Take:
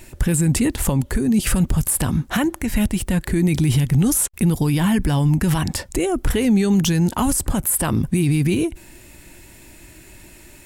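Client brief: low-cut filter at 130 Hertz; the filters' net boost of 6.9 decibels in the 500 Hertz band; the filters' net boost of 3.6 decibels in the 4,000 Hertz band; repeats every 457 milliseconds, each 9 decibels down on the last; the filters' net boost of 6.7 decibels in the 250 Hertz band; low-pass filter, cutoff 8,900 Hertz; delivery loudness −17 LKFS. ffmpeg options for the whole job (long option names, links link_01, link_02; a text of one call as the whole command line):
ffmpeg -i in.wav -af "highpass=130,lowpass=8900,equalizer=frequency=250:width_type=o:gain=8.5,equalizer=frequency=500:width_type=o:gain=5.5,equalizer=frequency=4000:width_type=o:gain=5,aecho=1:1:457|914|1371|1828:0.355|0.124|0.0435|0.0152,volume=-2.5dB" out.wav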